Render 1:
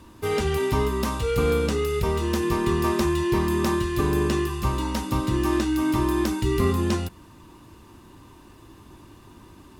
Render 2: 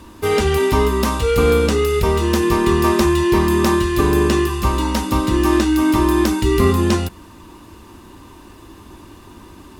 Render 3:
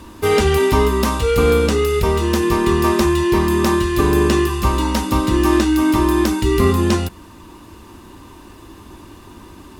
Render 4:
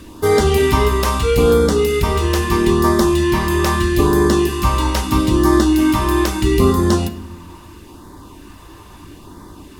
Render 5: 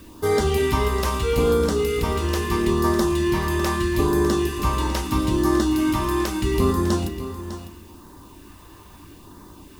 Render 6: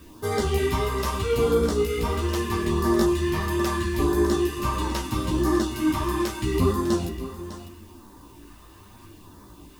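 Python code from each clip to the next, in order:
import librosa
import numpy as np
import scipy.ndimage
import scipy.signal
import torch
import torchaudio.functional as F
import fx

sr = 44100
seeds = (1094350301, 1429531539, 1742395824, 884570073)

y1 = fx.peak_eq(x, sr, hz=130.0, db=-9.0, octaves=0.44)
y1 = y1 * 10.0 ** (8.0 / 20.0)
y2 = fx.rider(y1, sr, range_db=10, speed_s=2.0)
y3 = fx.filter_lfo_notch(y2, sr, shape='sine', hz=0.77, low_hz=220.0, high_hz=2800.0, q=1.4)
y3 = fx.room_shoebox(y3, sr, seeds[0], volume_m3=410.0, walls='mixed', distance_m=0.39)
y3 = y3 * 10.0 ** (1.5 / 20.0)
y4 = fx.dmg_noise_colour(y3, sr, seeds[1], colour='blue', level_db=-51.0)
y4 = y4 + 10.0 ** (-12.0 / 20.0) * np.pad(y4, (int(602 * sr / 1000.0), 0))[:len(y4)]
y4 = y4 * 10.0 ** (-6.5 / 20.0)
y5 = fx.chorus_voices(y4, sr, voices=2, hz=0.83, base_ms=13, depth_ms=4.7, mix_pct=45)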